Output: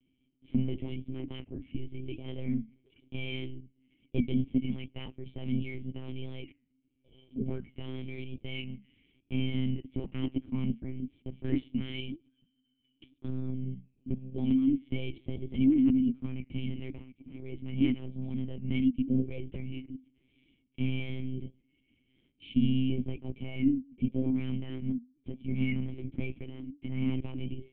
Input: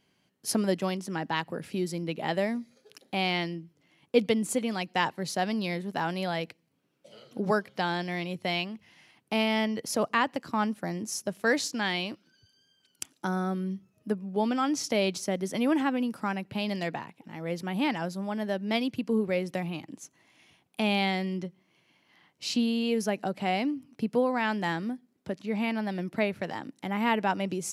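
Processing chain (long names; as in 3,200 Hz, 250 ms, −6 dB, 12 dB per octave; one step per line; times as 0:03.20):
in parallel at −7.5 dB: wave folding −21 dBFS
on the sum: formant resonators in series i
flanger 0.82 Hz, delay 4.1 ms, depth 6.9 ms, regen −77%
pitch vibrato 1 Hz 47 cents
one-pitch LPC vocoder at 8 kHz 130 Hz
level +7 dB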